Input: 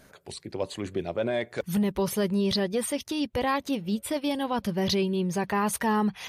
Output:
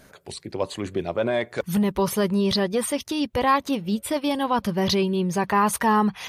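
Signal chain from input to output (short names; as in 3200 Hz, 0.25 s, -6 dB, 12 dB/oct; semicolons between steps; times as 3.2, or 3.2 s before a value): dynamic EQ 1100 Hz, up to +6 dB, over -44 dBFS, Q 2; gain +3.5 dB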